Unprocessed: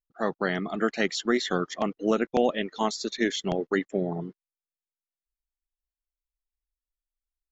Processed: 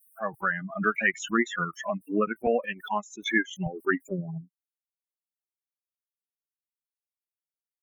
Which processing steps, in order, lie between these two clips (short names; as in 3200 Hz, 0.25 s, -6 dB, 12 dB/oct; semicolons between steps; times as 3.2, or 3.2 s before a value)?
per-bin expansion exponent 3; band shelf 1900 Hz +10 dB 1.2 oct; in parallel at +2.5 dB: compressor, threshold -38 dBFS, peak gain reduction 17.5 dB; on the sum: speed mistake 25 fps video run at 24 fps; Butterworth band-stop 4500 Hz, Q 0.74; backwards sustainer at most 110 dB/s